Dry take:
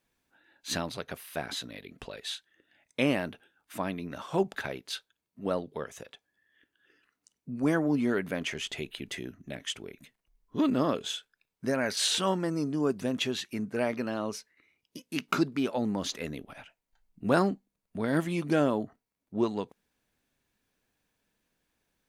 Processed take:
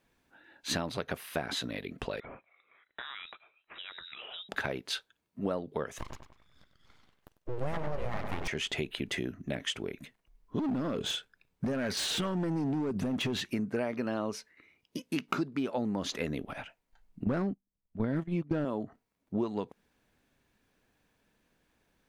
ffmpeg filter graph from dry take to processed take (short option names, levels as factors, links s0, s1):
-filter_complex "[0:a]asettb=1/sr,asplit=3[s0][s1][s2];[s0]atrim=end=2.204[s3];[s1]atrim=start=2.2:end=4.49,asetpts=PTS-STARTPTS,afade=t=in:d=0.004:c=qsin,afade=t=out:st=2.286:d=0.004:c=qsin,equalizer=f=240:w=0.31:g=-14.5,acompressor=threshold=0.00631:ratio=5:attack=3.2:release=140:knee=1:detection=peak,lowpass=f=3400:t=q:w=0.5098,lowpass=f=3400:t=q:w=0.6013,lowpass=f=3400:t=q:w=0.9,lowpass=f=3400:t=q:w=2.563,afreqshift=-4000[s4];[s2]atrim=start=4.486[s5];[s3][s4]acrossfade=d=0.004:c1=hsin:c2=qsin[s6];[s6][s5]acrossfade=d=0.004:c1=qsin:c2=hsin,asettb=1/sr,asplit=3[s7][s8][s9];[s7]atrim=end=5.984[s10];[s8]atrim=start=5.98:end=8.48,asetpts=PTS-STARTPTS,afade=t=in:d=0.004:c=qsin,afade=t=out:st=2.496:d=0.004:c=qsin,asplit=2[s11][s12];[s12]adelay=98,lowpass=f=2200:p=1,volume=0.447,asplit=2[s13][s14];[s14]adelay=98,lowpass=f=2200:p=1,volume=0.47,asplit=2[s15][s16];[s16]adelay=98,lowpass=f=2200:p=1,volume=0.47,asplit=2[s17][s18];[s18]adelay=98,lowpass=f=2200:p=1,volume=0.47,asplit=2[s19][s20];[s20]adelay=98,lowpass=f=2200:p=1,volume=0.47,asplit=2[s21][s22];[s22]adelay=98,lowpass=f=2200:p=1,volume=0.47[s23];[s11][s13][s15][s17][s19][s21][s23]amix=inputs=7:normalize=0,atrim=end_sample=110250,aeval=exprs='abs(val(0))':c=same[s24];[s9]atrim=start=8.476[s25];[s10][s24]acrossfade=d=0.004:c1=hsin:c2=qsin[s26];[s26][s25]acrossfade=d=0.004:c1=qsin:c2=hsin,asettb=1/sr,asplit=3[s27][s28][s29];[s27]atrim=end=10.594[s30];[s28]atrim=start=10.59:end=13.53,asetpts=PTS-STARTPTS,afade=t=in:d=0.004:c=qsin,afade=t=out:st=2.936:d=0.004:c=qsin,lowshelf=f=250:g=9.5,acompressor=threshold=0.0447:ratio=10:attack=3.2:release=140:knee=1:detection=peak,asoftclip=type=hard:threshold=0.0299[s31];[s29]atrim=start=13.526[s32];[s30][s31]acrossfade=d=0.004:c1=hsin:c2=qsin[s33];[s33][s32]acrossfade=d=0.004:c1=qsin:c2=hsin,asettb=1/sr,asplit=3[s34][s35][s36];[s34]atrim=end=17.244[s37];[s35]atrim=start=17.24:end=18.65,asetpts=PTS-STARTPTS,afade=t=in:d=0.004:c=qsin,afade=t=out:st=1.406:d=0.004:c=qsin,agate=range=0.112:threshold=0.0251:ratio=16:release=100:detection=peak,aemphasis=mode=reproduction:type=bsi,volume=5.62,asoftclip=hard,volume=0.178[s38];[s36]atrim=start=18.646[s39];[s37][s38]acrossfade=d=0.004:c1=hsin:c2=qsin[s40];[s40][s39]acrossfade=d=0.004:c1=qsin:c2=hsin,highshelf=f=3800:g=-8,acompressor=threshold=0.0158:ratio=6,volume=2.24"